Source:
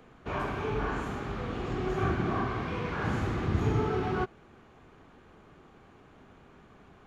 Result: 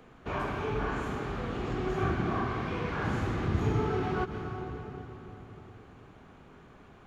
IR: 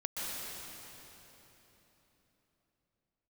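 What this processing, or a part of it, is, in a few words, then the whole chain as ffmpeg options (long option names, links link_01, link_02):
ducked reverb: -filter_complex "[0:a]asplit=3[link_01][link_02][link_03];[1:a]atrim=start_sample=2205[link_04];[link_02][link_04]afir=irnorm=-1:irlink=0[link_05];[link_03]apad=whole_len=311516[link_06];[link_05][link_06]sidechaincompress=threshold=-36dB:ratio=8:attack=30:release=146,volume=-8.5dB[link_07];[link_01][link_07]amix=inputs=2:normalize=0,volume=-1.5dB"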